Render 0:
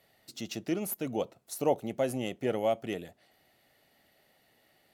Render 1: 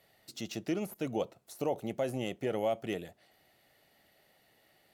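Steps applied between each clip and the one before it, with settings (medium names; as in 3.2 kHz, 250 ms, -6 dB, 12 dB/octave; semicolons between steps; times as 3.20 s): de-esser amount 95%; peaking EQ 250 Hz -4 dB 0.22 oct; peak limiter -22 dBFS, peak gain reduction 6.5 dB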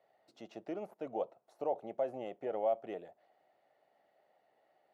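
band-pass filter 700 Hz, Q 1.7; trim +1 dB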